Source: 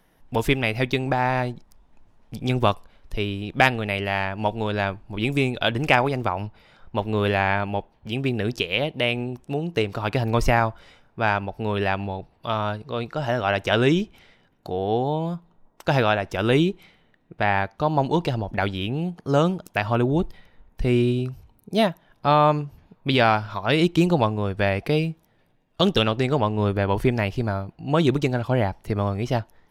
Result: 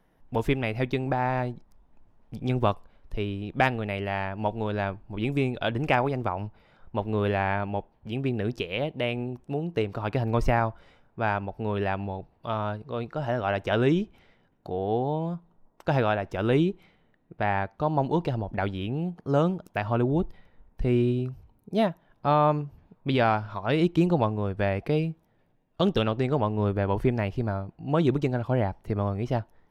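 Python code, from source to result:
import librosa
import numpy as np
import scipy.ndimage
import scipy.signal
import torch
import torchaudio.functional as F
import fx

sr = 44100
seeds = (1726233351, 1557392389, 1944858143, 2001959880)

y = fx.high_shelf(x, sr, hz=2300.0, db=-10.5)
y = y * librosa.db_to_amplitude(-3.0)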